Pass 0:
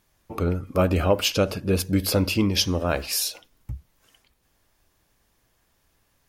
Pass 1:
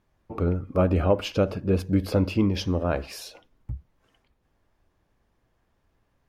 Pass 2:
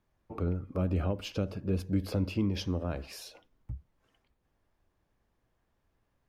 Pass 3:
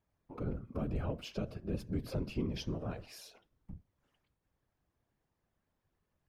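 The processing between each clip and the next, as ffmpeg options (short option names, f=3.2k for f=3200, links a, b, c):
-af "lowpass=f=1.1k:p=1"
-filter_complex "[0:a]acrossover=split=290|3000[a][b][c];[b]acompressor=threshold=-29dB:ratio=6[d];[a][d][c]amix=inputs=3:normalize=0,volume=-6dB"
-af "afftfilt=real='hypot(re,im)*cos(2*PI*random(0))':imag='hypot(re,im)*sin(2*PI*random(1))':win_size=512:overlap=0.75"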